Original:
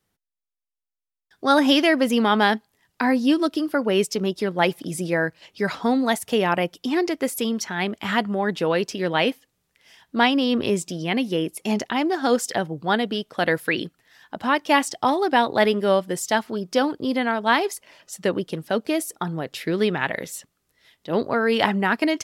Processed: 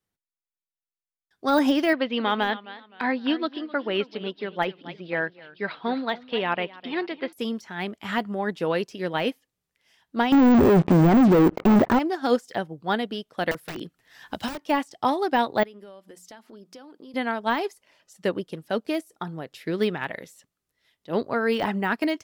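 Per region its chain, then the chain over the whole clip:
1.93–7.33 steep low-pass 4100 Hz 48 dB/oct + tilt +2 dB/oct + warbling echo 0.26 s, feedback 38%, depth 113 cents, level -14 dB
10.32–11.99 LPF 1600 Hz 24 dB/oct + sample leveller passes 5 + fast leveller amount 70%
13.51–14.63 wrapped overs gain 15 dB + three-band squash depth 100%
15.63–17.14 brick-wall FIR high-pass 170 Hz + compressor 10:1, threshold -31 dBFS + notches 60/120/180/240 Hz
whole clip: de-esser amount 70%; upward expander 1.5:1, over -35 dBFS

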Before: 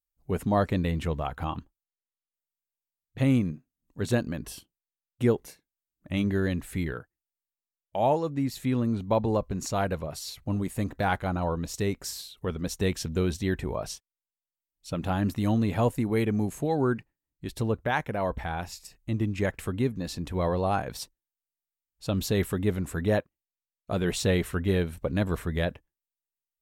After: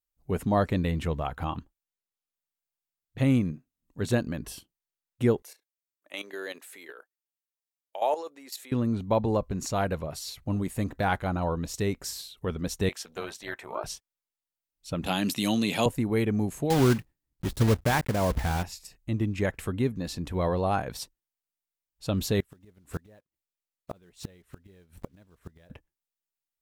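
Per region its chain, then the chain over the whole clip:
5.42–8.72 HPF 410 Hz 24 dB/oct + high shelf 3200 Hz +6 dB + level quantiser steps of 12 dB
12.89–13.84 HPF 600 Hz + dynamic EQ 980 Hz, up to +7 dB, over -47 dBFS, Q 0.71 + AM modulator 260 Hz, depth 60%
15.06–15.86 HPF 150 Hz 24 dB/oct + band shelf 5400 Hz +13.5 dB 2.7 oct
16.7–18.63 block floating point 3-bit + low shelf 240 Hz +9 dB
22.4–25.7 block floating point 5-bit + flipped gate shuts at -21 dBFS, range -31 dB
whole clip: dry

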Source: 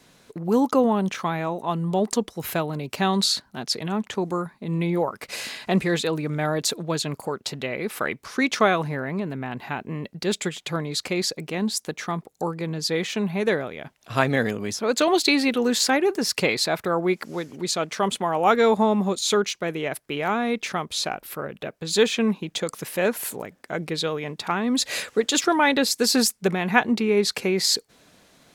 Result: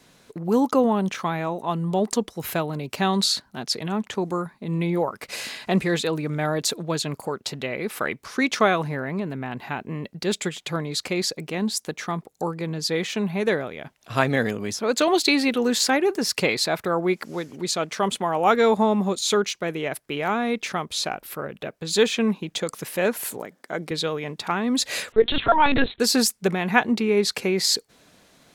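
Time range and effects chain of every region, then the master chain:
23.37–23.91 HPF 180 Hz + bell 2600 Hz -7 dB 0.21 oct
25.12–26 comb 4.3 ms, depth 88% + LPC vocoder at 8 kHz pitch kept
whole clip: dry

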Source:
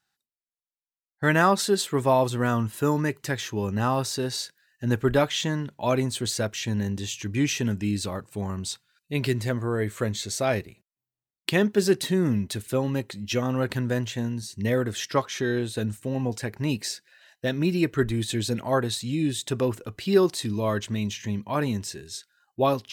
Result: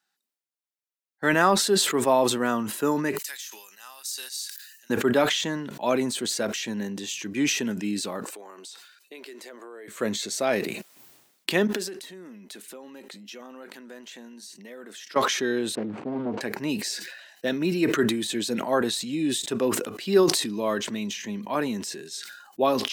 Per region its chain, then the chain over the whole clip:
3.18–4.9 HPF 1400 Hz 6 dB/oct + differentiator
8.24–9.88 HPF 340 Hz 24 dB/oct + compressor 12:1, threshold -39 dBFS
11.67–15.16 low shelf 270 Hz -9.5 dB + compressor 8:1, threshold -39 dBFS + brick-wall FIR high-pass 150 Hz
15.75–16.41 median filter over 25 samples + LPF 2200 Hz + Doppler distortion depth 0.69 ms
whole clip: HPF 200 Hz 24 dB/oct; sustainer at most 53 dB/s

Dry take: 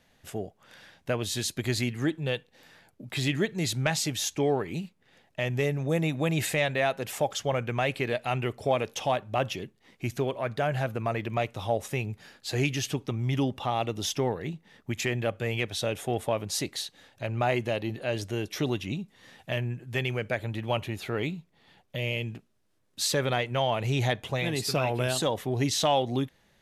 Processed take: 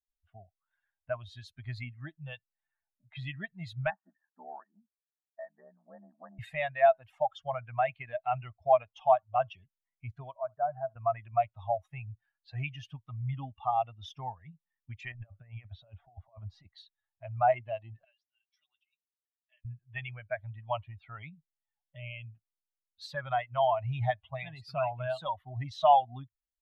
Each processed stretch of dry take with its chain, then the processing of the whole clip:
3.9–6.39 ring modulator 37 Hz + brick-wall FIR band-pass 180–1900 Hz
10.37–10.96 LPF 1200 Hz + low shelf 140 Hz -10.5 dB + flutter echo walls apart 11.7 m, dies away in 0.23 s
15.12–16.67 LPF 1700 Hz 6 dB/oct + negative-ratio compressor -33 dBFS, ratio -0.5
18.04–19.65 differentiator + notch comb 230 Hz
whole clip: per-bin expansion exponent 2; low-pass opened by the level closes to 3000 Hz, open at -32 dBFS; EQ curve 110 Hz 0 dB, 460 Hz -28 dB, 650 Hz +10 dB, 4100 Hz -10 dB, 7100 Hz -28 dB

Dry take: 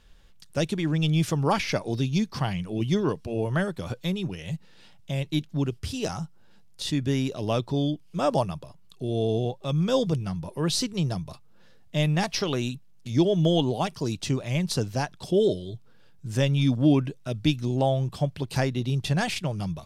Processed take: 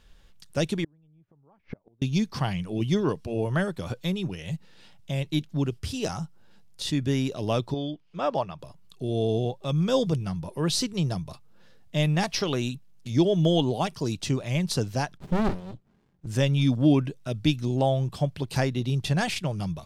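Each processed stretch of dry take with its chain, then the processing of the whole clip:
0.84–2.02 LPF 1100 Hz + flipped gate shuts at -23 dBFS, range -36 dB
7.74–8.59 LPF 3400 Hz + low shelf 340 Hz -10 dB
15.17–16.27 high shelf 4200 Hz -8 dB + comb 5 ms, depth 59% + running maximum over 65 samples
whole clip: dry

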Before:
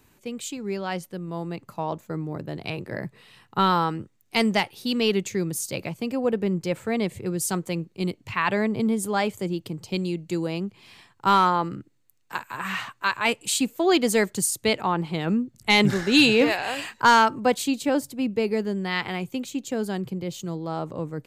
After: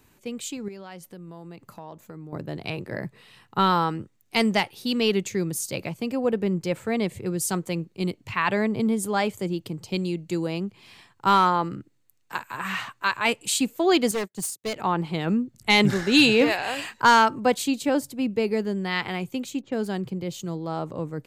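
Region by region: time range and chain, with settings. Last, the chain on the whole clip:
0.68–2.33 compressor 3:1, threshold -40 dBFS + high shelf 11000 Hz +5 dB
14.11–14.76 HPF 90 Hz 24 dB/oct + hard clip -22.5 dBFS + upward expander 2.5:1, over -46 dBFS
19.61–20.14 median filter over 3 samples + low-pass opened by the level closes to 820 Hz, open at -27 dBFS
whole clip: dry

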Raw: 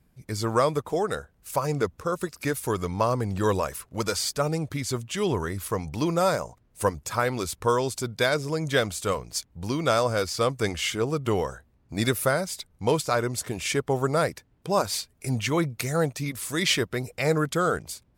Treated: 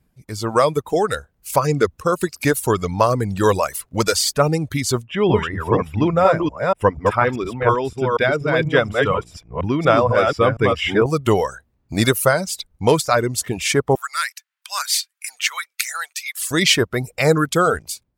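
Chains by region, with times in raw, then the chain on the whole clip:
5.05–11.06 reverse delay 0.24 s, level -2 dB + polynomial smoothing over 25 samples + mismatched tape noise reduction decoder only
13.95–16.51 HPF 1400 Hz 24 dB/oct + short-mantissa float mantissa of 4-bit
whole clip: reverb removal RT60 1 s; AGC gain up to 11 dB

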